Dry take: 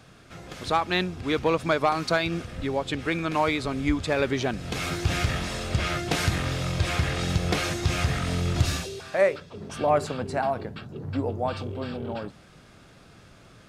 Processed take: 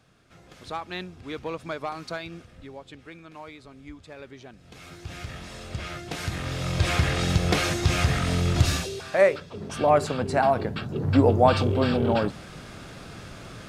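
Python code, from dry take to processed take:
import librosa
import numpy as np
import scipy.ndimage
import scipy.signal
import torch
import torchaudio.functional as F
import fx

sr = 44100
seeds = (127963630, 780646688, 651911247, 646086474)

y = fx.gain(x, sr, db=fx.line((2.09, -9.5), (3.28, -18.5), (4.53, -18.5), (5.64, -8.0), (6.15, -8.0), (6.85, 2.5), (10.05, 2.5), (11.26, 10.0)))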